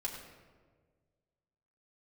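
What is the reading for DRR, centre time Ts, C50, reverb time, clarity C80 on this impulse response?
−2.0 dB, 43 ms, 4.5 dB, 1.6 s, 5.5 dB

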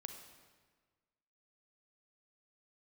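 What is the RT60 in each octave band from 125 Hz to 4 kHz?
1.6, 1.6, 1.5, 1.5, 1.4, 1.2 seconds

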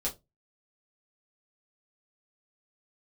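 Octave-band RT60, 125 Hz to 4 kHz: 0.35, 0.25, 0.25, 0.15, 0.15, 0.15 seconds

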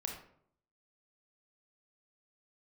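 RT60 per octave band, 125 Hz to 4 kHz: 0.80, 0.75, 0.70, 0.60, 0.50, 0.35 seconds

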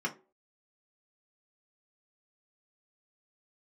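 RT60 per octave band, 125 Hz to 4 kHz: 0.25, 0.35, 0.45, 0.30, 0.25, 0.15 seconds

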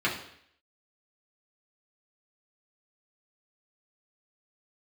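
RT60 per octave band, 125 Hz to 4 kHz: 0.65, 0.65, 0.65, 0.65, 0.70, 0.70 seconds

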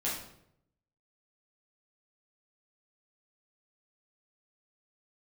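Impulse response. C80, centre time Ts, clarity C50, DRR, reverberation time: 7.0 dB, 45 ms, 3.5 dB, −7.0 dB, 0.75 s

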